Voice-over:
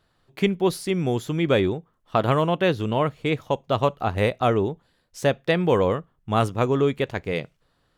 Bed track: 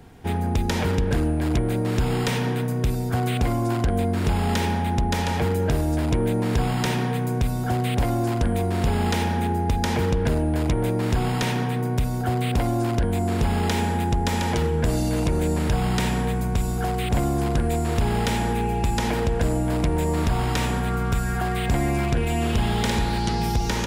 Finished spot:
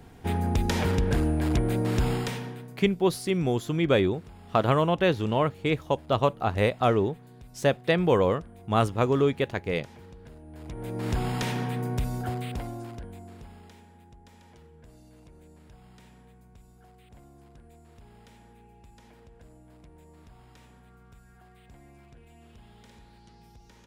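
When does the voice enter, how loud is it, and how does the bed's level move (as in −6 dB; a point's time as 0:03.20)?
2.40 s, −2.0 dB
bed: 0:02.08 −2.5 dB
0:02.97 −26 dB
0:10.41 −26 dB
0:11.09 −5.5 dB
0:12.15 −5.5 dB
0:13.86 −30.5 dB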